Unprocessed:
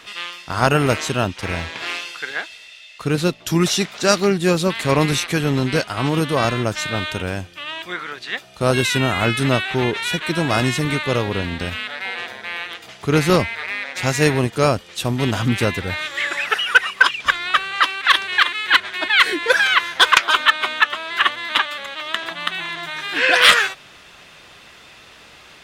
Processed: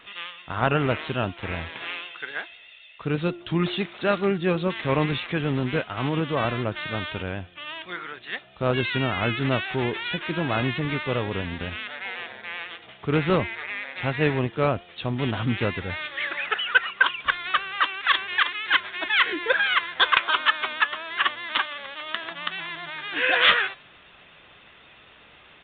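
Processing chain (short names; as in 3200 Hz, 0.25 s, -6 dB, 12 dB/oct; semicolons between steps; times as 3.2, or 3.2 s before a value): de-hum 350 Hz, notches 37; vibrato 7.9 Hz 43 cents; downsampling 8000 Hz; gain -6 dB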